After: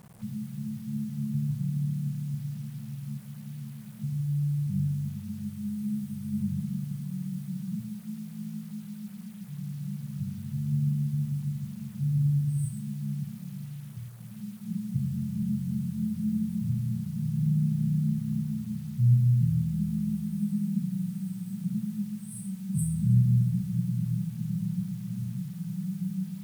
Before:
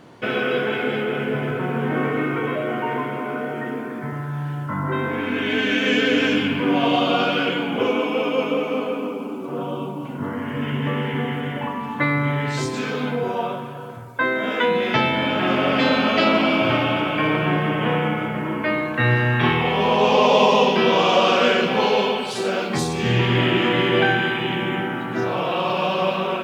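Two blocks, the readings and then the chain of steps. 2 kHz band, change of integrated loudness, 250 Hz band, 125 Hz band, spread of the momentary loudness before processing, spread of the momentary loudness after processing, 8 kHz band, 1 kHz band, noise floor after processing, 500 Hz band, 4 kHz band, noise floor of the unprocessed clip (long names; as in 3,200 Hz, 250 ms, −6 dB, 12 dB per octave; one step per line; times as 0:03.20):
below −35 dB, −10.0 dB, −7.0 dB, 0.0 dB, 11 LU, 13 LU, −7.0 dB, below −40 dB, −42 dBFS, below −40 dB, below −30 dB, −30 dBFS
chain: brick-wall band-stop 220–8,000 Hz
bit reduction 9 bits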